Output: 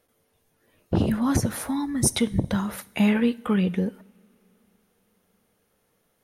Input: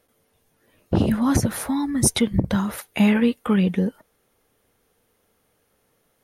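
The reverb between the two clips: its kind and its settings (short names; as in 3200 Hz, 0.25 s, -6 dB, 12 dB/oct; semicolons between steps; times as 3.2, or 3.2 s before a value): two-slope reverb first 0.6 s, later 4.2 s, from -22 dB, DRR 17 dB; gain -3 dB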